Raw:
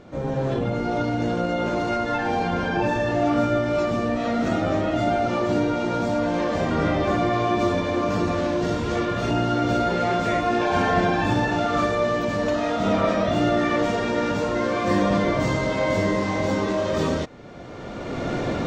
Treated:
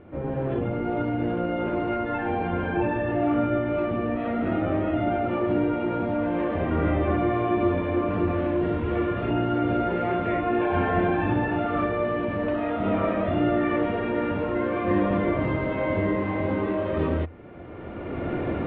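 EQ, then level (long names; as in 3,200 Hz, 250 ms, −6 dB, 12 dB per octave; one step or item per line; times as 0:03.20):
Butterworth low-pass 2,900 Hz 36 dB per octave
parametric band 82 Hz +12 dB 0.33 octaves
parametric band 340 Hz +6 dB 0.5 octaves
−4.5 dB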